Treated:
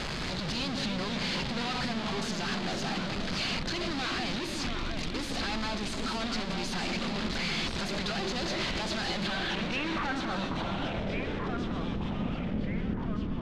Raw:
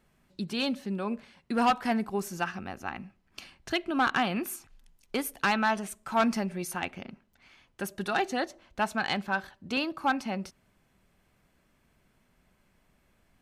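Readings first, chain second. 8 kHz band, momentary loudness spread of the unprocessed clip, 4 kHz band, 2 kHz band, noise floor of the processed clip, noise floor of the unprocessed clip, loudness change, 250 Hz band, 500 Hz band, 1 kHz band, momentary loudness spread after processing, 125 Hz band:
+1.5 dB, 14 LU, +6.0 dB, -1.0 dB, -35 dBFS, -69 dBFS, -1.5 dB, 0.0 dB, -1.0 dB, -5.0 dB, 3 LU, +8.0 dB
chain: one-bit comparator; band-stop 5.6 kHz, Q 9.4; low-pass sweep 4.7 kHz -> 220 Hz, 9.18–12.00 s; ever faster or slower copies 206 ms, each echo -2 st, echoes 3, each echo -6 dB; on a send: bucket-brigade echo 334 ms, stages 1024, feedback 82%, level -6.5 dB; on the sum: loudspeaker Doppler distortion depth 0.13 ms; trim -2.5 dB

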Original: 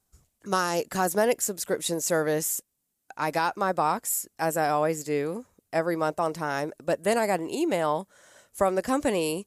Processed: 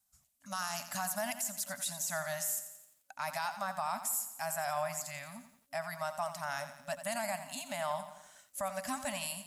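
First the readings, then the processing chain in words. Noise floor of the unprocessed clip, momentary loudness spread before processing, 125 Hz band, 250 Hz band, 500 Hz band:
-78 dBFS, 7 LU, -13.5 dB, -17.5 dB, -14.5 dB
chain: FFT band-reject 270–570 Hz; tilt EQ +2 dB/octave; peak limiter -17.5 dBFS, peak gain reduction 9.5 dB; bit-crushed delay 87 ms, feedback 55%, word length 9-bit, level -11 dB; trim -7.5 dB

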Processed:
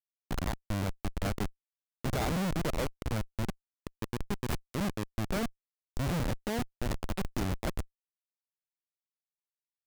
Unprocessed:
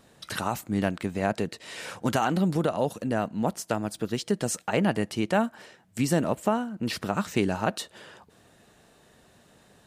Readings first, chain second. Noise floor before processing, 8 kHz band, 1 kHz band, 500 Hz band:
-59 dBFS, -8.5 dB, -9.5 dB, -10.0 dB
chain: self-modulated delay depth 0.29 ms; spectral selection erased 3.21–5.07 s, 440–7200 Hz; Schmitt trigger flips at -25 dBFS

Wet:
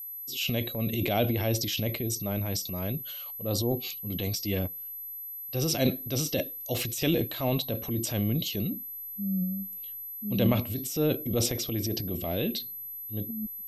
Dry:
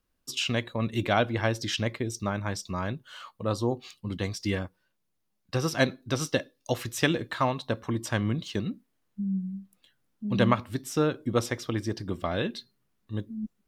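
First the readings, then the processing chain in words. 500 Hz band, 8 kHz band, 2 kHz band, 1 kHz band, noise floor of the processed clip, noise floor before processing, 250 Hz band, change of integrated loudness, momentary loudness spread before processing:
-1.0 dB, +4.5 dB, -6.5 dB, -7.0 dB, -40 dBFS, -76 dBFS, 0.0 dB, 0.0 dB, 11 LU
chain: transient shaper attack -5 dB, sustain +9 dB; whistle 12 kHz -37 dBFS; high-order bell 1.3 kHz -12 dB 1.3 oct

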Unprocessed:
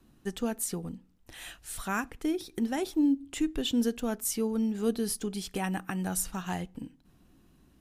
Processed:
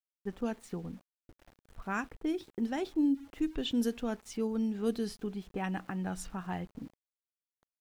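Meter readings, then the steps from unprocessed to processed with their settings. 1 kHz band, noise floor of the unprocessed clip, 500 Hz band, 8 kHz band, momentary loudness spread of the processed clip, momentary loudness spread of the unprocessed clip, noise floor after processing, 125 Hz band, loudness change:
-3.0 dB, -63 dBFS, -3.0 dB, -15.0 dB, 12 LU, 15 LU, under -85 dBFS, -3.0 dB, -3.5 dB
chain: level-controlled noise filter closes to 340 Hz, open at -23.5 dBFS; small samples zeroed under -51.5 dBFS; trim -3 dB

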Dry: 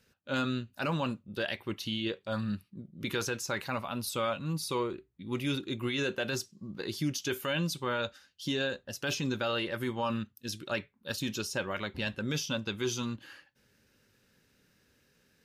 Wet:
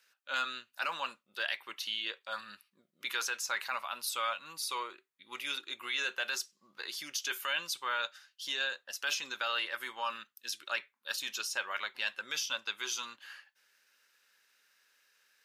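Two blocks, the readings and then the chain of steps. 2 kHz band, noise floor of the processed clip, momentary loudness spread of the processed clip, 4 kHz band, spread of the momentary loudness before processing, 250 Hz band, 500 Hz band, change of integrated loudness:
+2.0 dB, -80 dBFS, 9 LU, +1.5 dB, 7 LU, -23.5 dB, -12.0 dB, -1.5 dB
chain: Chebyshev high-pass 1.2 kHz, order 2; trim +2 dB

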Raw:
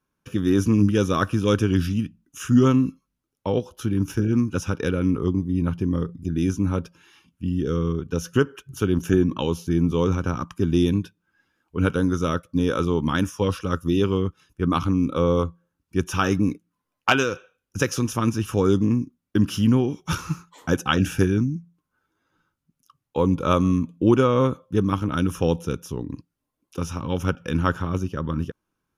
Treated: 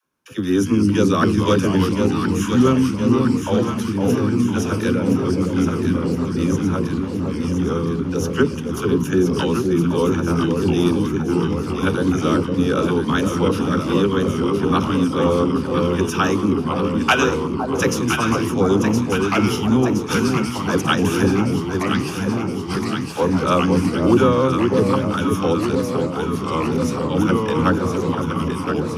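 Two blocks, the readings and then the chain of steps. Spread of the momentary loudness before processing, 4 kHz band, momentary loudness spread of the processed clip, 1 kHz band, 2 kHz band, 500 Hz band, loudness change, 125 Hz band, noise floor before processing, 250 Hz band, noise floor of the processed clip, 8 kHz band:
10 LU, +6.0 dB, 6 LU, +6.5 dB, +5.5 dB, +5.5 dB, +4.0 dB, +2.5 dB, -81 dBFS, +5.0 dB, -26 dBFS, +5.5 dB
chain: ever faster or slower copies 141 ms, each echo -2 st, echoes 3, each echo -6 dB; high-pass 180 Hz 6 dB/octave; phase dispersion lows, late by 49 ms, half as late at 410 Hz; on a send: echo whose repeats swap between lows and highs 509 ms, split 940 Hz, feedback 79%, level -4 dB; on the sum: trim +3.5 dB

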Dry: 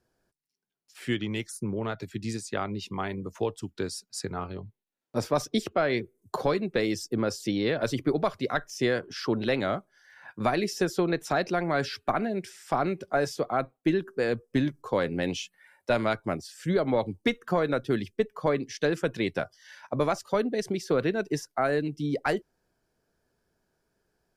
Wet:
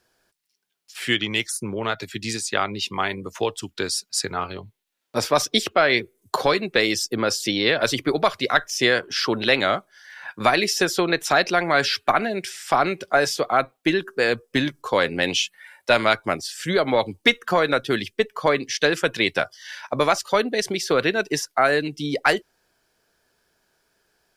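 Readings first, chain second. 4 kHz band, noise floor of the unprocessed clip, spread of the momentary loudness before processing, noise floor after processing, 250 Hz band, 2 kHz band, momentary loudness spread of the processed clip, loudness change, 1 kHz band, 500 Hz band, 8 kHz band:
+14.0 dB, -81 dBFS, 8 LU, -74 dBFS, +2.0 dB, +12.0 dB, 8 LU, +7.0 dB, +8.5 dB, +5.5 dB, +12.0 dB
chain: FFT filter 180 Hz 0 dB, 3.3 kHz +15 dB, 6.4 kHz +12 dB

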